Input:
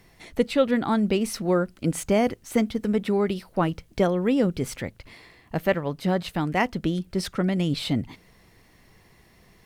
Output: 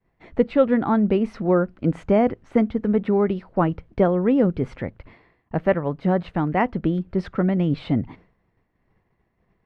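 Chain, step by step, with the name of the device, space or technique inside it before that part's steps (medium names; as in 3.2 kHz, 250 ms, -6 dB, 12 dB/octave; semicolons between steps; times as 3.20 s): hearing-loss simulation (low-pass 1.6 kHz 12 dB/octave; expander -46 dBFS); trim +3.5 dB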